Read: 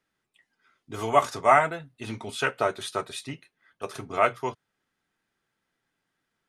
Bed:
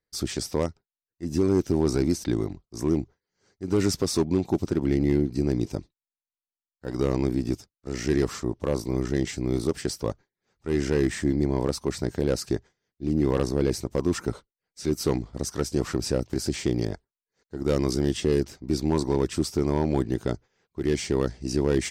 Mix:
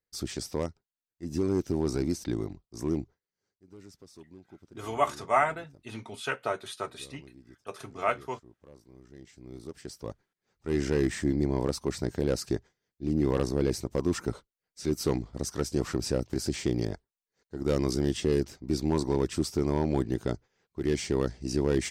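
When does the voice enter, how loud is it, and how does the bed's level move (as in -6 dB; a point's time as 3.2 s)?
3.85 s, -5.5 dB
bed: 3.15 s -5.5 dB
3.68 s -27 dB
9.01 s -27 dB
10.51 s -3 dB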